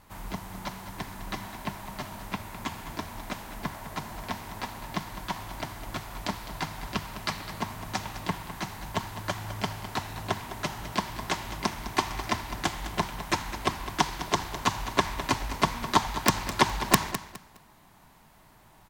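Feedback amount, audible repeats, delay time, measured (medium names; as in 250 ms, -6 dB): 25%, 2, 207 ms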